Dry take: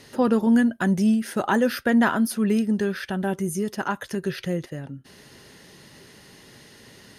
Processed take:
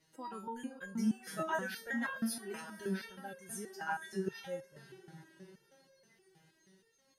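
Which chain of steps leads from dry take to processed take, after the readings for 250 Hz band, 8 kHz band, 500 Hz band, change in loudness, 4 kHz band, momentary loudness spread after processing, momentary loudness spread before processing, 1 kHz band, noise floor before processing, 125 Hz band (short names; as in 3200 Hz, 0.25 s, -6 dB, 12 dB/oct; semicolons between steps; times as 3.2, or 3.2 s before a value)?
-18.5 dB, -10.0 dB, -16.5 dB, -16.5 dB, -13.0 dB, 20 LU, 10 LU, -13.0 dB, -50 dBFS, -17.5 dB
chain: spectral noise reduction 13 dB; diffused feedback echo 0.522 s, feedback 50%, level -14 dB; stepped resonator 6.3 Hz 160–540 Hz; gain +2 dB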